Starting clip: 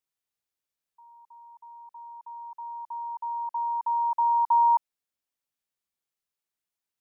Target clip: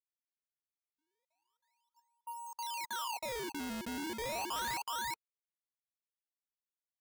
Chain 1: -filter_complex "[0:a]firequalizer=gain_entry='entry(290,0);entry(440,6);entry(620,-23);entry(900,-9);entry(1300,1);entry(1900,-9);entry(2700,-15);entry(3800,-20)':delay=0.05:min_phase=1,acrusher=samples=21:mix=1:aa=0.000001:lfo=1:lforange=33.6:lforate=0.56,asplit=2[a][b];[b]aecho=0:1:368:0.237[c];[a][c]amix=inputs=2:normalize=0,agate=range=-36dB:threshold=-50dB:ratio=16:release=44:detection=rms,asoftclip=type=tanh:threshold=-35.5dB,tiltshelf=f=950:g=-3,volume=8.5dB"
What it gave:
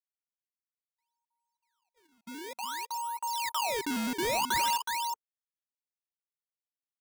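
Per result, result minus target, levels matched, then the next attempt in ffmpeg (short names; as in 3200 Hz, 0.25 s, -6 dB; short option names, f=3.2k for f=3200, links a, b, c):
decimation with a swept rate: distortion -10 dB; soft clip: distortion -5 dB
-filter_complex "[0:a]firequalizer=gain_entry='entry(290,0);entry(440,6);entry(620,-23);entry(900,-9);entry(1300,1);entry(1900,-9);entry(2700,-15);entry(3800,-20)':delay=0.05:min_phase=1,acrusher=samples=21:mix=1:aa=0.000001:lfo=1:lforange=33.6:lforate=0.33,asplit=2[a][b];[b]aecho=0:1:368:0.237[c];[a][c]amix=inputs=2:normalize=0,agate=range=-36dB:threshold=-50dB:ratio=16:release=44:detection=rms,asoftclip=type=tanh:threshold=-35.5dB,tiltshelf=f=950:g=-3,volume=8.5dB"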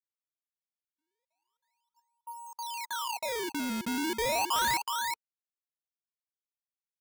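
soft clip: distortion -5 dB
-filter_complex "[0:a]firequalizer=gain_entry='entry(290,0);entry(440,6);entry(620,-23);entry(900,-9);entry(1300,1);entry(1900,-9);entry(2700,-15);entry(3800,-20)':delay=0.05:min_phase=1,acrusher=samples=21:mix=1:aa=0.000001:lfo=1:lforange=33.6:lforate=0.33,asplit=2[a][b];[b]aecho=0:1:368:0.237[c];[a][c]amix=inputs=2:normalize=0,agate=range=-36dB:threshold=-50dB:ratio=16:release=44:detection=rms,asoftclip=type=tanh:threshold=-45.5dB,tiltshelf=f=950:g=-3,volume=8.5dB"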